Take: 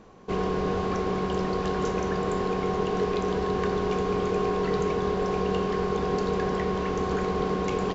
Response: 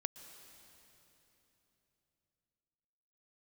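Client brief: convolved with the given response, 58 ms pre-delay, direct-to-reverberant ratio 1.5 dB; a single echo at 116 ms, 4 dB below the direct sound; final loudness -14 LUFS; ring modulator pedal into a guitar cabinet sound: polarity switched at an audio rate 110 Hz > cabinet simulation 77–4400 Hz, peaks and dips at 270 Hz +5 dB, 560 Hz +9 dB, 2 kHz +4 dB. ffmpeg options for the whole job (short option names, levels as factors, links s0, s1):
-filter_complex "[0:a]aecho=1:1:116:0.631,asplit=2[s0][s1];[1:a]atrim=start_sample=2205,adelay=58[s2];[s1][s2]afir=irnorm=-1:irlink=0,volume=1[s3];[s0][s3]amix=inputs=2:normalize=0,aeval=exprs='val(0)*sgn(sin(2*PI*110*n/s))':c=same,highpass=77,equalizer=f=270:t=q:w=4:g=5,equalizer=f=560:t=q:w=4:g=9,equalizer=f=2000:t=q:w=4:g=4,lowpass=f=4400:w=0.5412,lowpass=f=4400:w=1.3066,volume=1.58"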